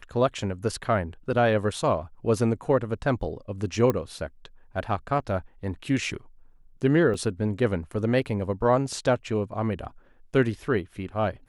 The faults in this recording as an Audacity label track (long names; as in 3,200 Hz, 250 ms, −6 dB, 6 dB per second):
3.900000	3.900000	click −12 dBFS
7.140000	7.140000	drop-out 3.2 ms